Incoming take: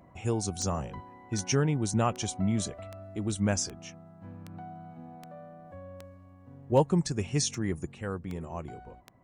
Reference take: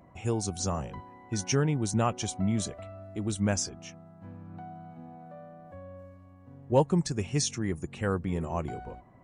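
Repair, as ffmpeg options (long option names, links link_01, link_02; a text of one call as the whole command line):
ffmpeg -i in.wav -af "adeclick=threshold=4,asetnsamples=nb_out_samples=441:pad=0,asendcmd='7.92 volume volume 6dB',volume=0dB" out.wav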